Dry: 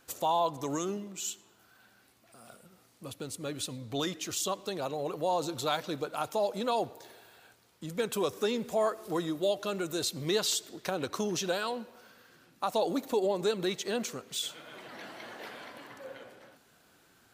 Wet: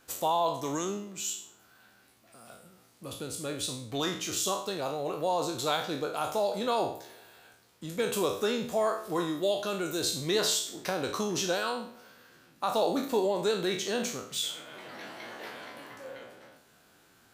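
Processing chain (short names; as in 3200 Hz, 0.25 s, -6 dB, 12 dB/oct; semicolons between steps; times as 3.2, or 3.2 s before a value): spectral trails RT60 0.51 s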